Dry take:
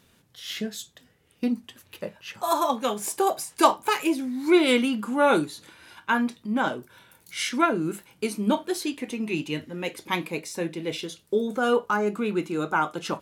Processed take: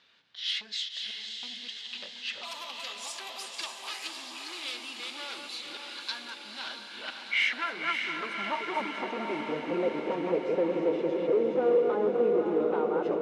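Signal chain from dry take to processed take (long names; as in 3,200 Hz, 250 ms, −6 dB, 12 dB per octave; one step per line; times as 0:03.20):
delay that plays each chunk backwards 222 ms, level −7 dB
low-pass that shuts in the quiet parts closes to 1,900 Hz, open at −20 dBFS
dynamic equaliser 5,000 Hz, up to −5 dB, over −42 dBFS, Q 0.79
downward compressor 5 to 1, threshold −36 dBFS, peak gain reduction 21 dB
sine wavefolder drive 11 dB, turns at −20.5 dBFS
band-pass filter sweep 4,300 Hz → 490 Hz, 0:06.46–0:09.75
feedback delay with all-pass diffusion 570 ms, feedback 66%, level −4.5 dB
level +2 dB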